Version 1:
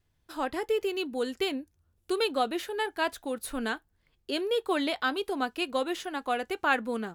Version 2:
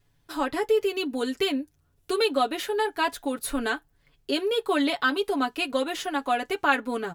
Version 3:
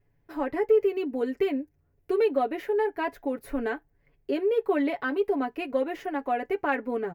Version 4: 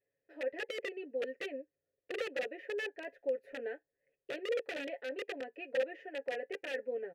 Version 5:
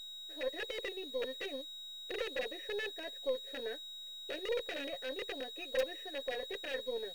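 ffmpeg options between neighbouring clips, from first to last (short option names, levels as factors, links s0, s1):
-filter_complex "[0:a]aecho=1:1:7.1:0.73,asplit=2[s0][s1];[s1]acompressor=threshold=0.0224:ratio=6,volume=0.794[s2];[s0][s2]amix=inputs=2:normalize=0"
-af "firequalizer=gain_entry='entry(280,0);entry(410,4);entry(1300,-8);entry(2000,0);entry(3500,-19);entry(5300,-15);entry(8600,-22);entry(15000,-6)':delay=0.05:min_phase=1,asoftclip=type=tanh:threshold=0.473,volume=0.841"
-filter_complex "[0:a]aeval=exprs='(mod(10*val(0)+1,2)-1)/10':c=same,asplit=3[s0][s1][s2];[s0]bandpass=f=530:t=q:w=8,volume=1[s3];[s1]bandpass=f=1840:t=q:w=8,volume=0.501[s4];[s2]bandpass=f=2480:t=q:w=8,volume=0.355[s5];[s3][s4][s5]amix=inputs=3:normalize=0"
-filter_complex "[0:a]aeval=exprs='val(0)+0.00631*sin(2*PI*3800*n/s)':c=same,asplit=2[s0][s1];[s1]acrusher=bits=5:dc=4:mix=0:aa=0.000001,volume=0.422[s2];[s0][s2]amix=inputs=2:normalize=0,volume=0.708"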